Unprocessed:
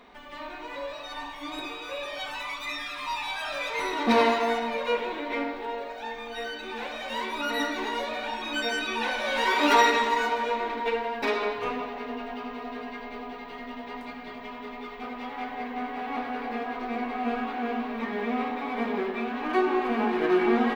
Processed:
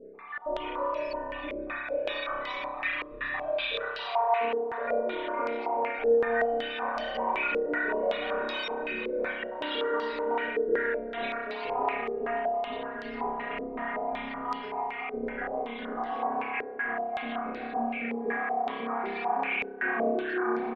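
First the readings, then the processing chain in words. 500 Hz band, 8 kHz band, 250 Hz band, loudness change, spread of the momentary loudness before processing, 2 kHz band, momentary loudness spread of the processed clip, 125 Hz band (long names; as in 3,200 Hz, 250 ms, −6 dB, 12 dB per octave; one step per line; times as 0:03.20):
+0.5 dB, below −20 dB, −6.5 dB, −2.0 dB, 15 LU, −1.5 dB, 7 LU, can't be measured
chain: time-frequency cells dropped at random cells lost 67%
notch filter 880 Hz, Q 15
dynamic equaliser 560 Hz, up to +5 dB, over −43 dBFS, Q 0.86
downward compressor, threshold −33 dBFS, peak gain reduction 16 dB
brickwall limiter −32 dBFS, peak gain reduction 10 dB
high-frequency loss of the air 160 metres
on a send: single-tap delay 486 ms −9.5 dB
on the sum: spring reverb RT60 1.3 s, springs 30 ms, chirp 60 ms, DRR −6.5 dB
low-pass on a step sequencer 5.3 Hz 450–4,800 Hz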